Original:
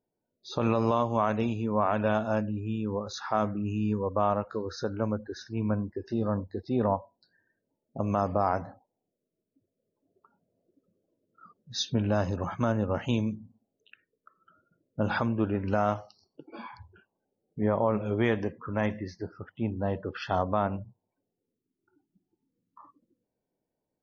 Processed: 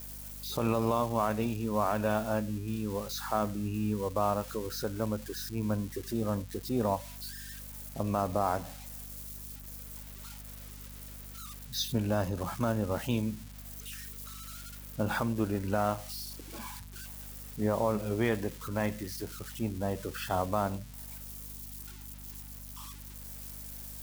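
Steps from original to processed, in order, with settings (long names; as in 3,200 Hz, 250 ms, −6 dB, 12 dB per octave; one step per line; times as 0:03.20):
spike at every zero crossing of −30 dBFS
mains hum 50 Hz, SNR 14 dB
level −3 dB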